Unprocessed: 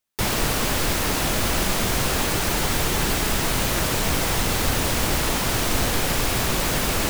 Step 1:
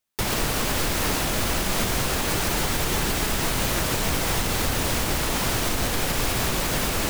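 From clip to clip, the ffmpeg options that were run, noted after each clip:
-af "alimiter=limit=-13.5dB:level=0:latency=1:release=113"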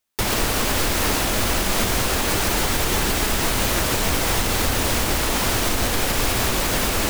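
-af "equalizer=f=150:w=4.8:g=-9,volume=3.5dB"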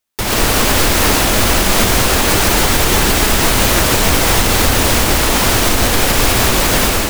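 -af "dynaudnorm=f=120:g=5:m=10dB,volume=1dB"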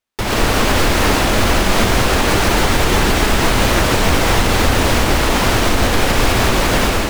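-af "lowpass=f=3.3k:p=1"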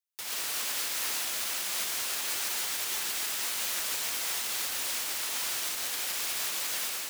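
-af "aderivative,volume=-8dB"

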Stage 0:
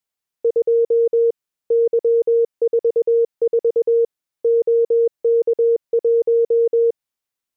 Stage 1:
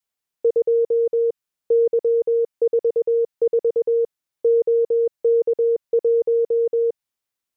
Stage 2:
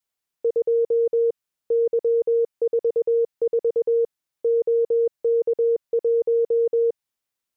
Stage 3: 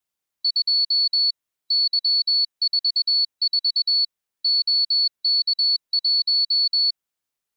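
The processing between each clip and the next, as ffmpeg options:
-af "adynamicequalizer=threshold=0.0447:dfrequency=370:dqfactor=0.9:tfrequency=370:tqfactor=0.9:attack=5:release=100:ratio=0.375:range=2.5:mode=cutabove:tftype=bell"
-af "alimiter=limit=-16dB:level=0:latency=1:release=26"
-af "afftfilt=real='real(if(lt(b,736),b+184*(1-2*mod(floor(b/184),2)),b),0)':imag='imag(if(lt(b,736),b+184*(1-2*mod(floor(b/184),2)),b),0)':win_size=2048:overlap=0.75"

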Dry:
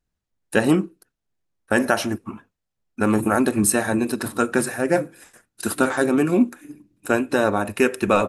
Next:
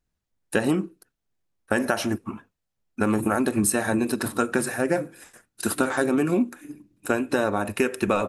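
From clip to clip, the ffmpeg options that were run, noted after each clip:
-af "acompressor=threshold=-18dB:ratio=6"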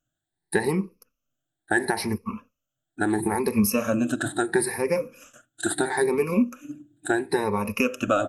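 -af "afftfilt=real='re*pow(10,20/40*sin(2*PI*(0.86*log(max(b,1)*sr/1024/100)/log(2)-(0.74)*(pts-256)/sr)))':imag='im*pow(10,20/40*sin(2*PI*(0.86*log(max(b,1)*sr/1024/100)/log(2)-(0.74)*(pts-256)/sr)))':win_size=1024:overlap=0.75,volume=-4dB"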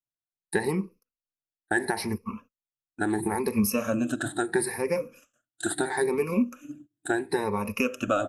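-af "agate=range=-19dB:threshold=-45dB:ratio=16:detection=peak,volume=-3dB"

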